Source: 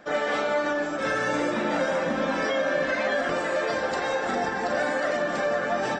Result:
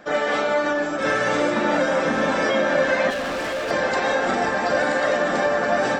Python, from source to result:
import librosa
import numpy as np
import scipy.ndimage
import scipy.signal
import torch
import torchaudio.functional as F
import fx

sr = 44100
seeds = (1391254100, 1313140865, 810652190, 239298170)

y = x + 10.0 ** (-5.0 / 20.0) * np.pad(x, (int(979 * sr / 1000.0), 0))[:len(x)]
y = fx.clip_hard(y, sr, threshold_db=-28.0, at=(3.1, 3.71))
y = y * 10.0 ** (4.0 / 20.0)